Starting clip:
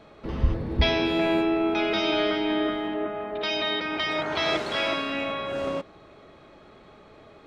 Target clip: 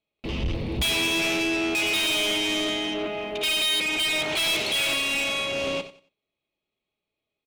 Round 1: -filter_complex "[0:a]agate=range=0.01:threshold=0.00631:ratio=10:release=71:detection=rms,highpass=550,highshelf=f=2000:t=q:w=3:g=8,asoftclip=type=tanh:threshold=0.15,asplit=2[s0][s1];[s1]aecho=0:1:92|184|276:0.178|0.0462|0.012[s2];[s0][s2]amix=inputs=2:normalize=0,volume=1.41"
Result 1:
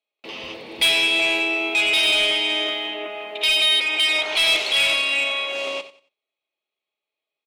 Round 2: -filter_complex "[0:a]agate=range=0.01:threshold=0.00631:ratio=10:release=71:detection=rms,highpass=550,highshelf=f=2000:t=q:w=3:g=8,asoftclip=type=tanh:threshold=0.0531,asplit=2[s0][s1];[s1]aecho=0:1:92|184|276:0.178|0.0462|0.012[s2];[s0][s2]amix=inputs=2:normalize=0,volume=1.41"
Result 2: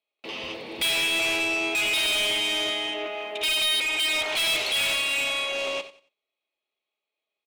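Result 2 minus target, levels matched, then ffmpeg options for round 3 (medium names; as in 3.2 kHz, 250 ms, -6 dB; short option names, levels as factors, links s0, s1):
500 Hz band -2.5 dB
-filter_complex "[0:a]agate=range=0.01:threshold=0.00631:ratio=10:release=71:detection=rms,highshelf=f=2000:t=q:w=3:g=8,asoftclip=type=tanh:threshold=0.0531,asplit=2[s0][s1];[s1]aecho=0:1:92|184|276:0.178|0.0462|0.012[s2];[s0][s2]amix=inputs=2:normalize=0,volume=1.41"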